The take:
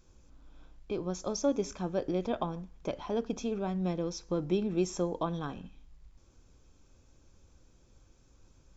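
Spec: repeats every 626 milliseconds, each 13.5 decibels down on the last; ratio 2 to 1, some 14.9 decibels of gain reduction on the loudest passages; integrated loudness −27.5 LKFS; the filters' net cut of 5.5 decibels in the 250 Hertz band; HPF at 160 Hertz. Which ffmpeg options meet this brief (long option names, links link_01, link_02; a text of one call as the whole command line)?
ffmpeg -i in.wav -af "highpass=160,equalizer=frequency=250:width_type=o:gain=-7,acompressor=threshold=-56dB:ratio=2,aecho=1:1:626|1252:0.211|0.0444,volume=22.5dB" out.wav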